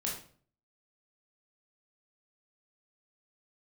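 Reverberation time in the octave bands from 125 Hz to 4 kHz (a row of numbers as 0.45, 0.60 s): 0.65, 0.60, 0.50, 0.45, 0.40, 0.35 s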